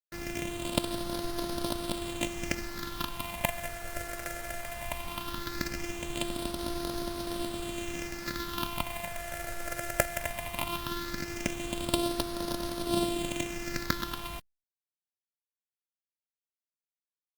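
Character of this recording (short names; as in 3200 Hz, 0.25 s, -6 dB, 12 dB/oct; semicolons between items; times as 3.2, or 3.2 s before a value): a buzz of ramps at a fixed pitch in blocks of 128 samples; phasing stages 6, 0.18 Hz, lowest notch 260–2200 Hz; a quantiser's noise floor 8-bit, dither none; Opus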